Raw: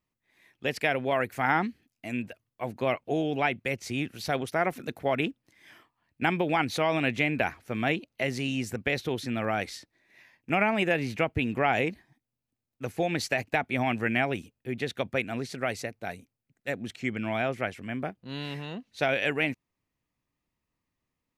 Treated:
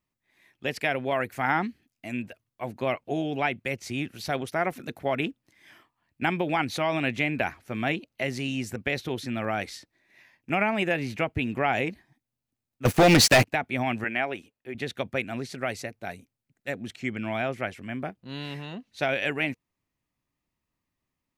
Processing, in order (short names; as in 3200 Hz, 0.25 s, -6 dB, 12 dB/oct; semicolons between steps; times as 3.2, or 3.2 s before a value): notch 470 Hz, Q 12; 12.85–13.45 sample leveller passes 5; 14.04–14.75 tone controls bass -13 dB, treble -7 dB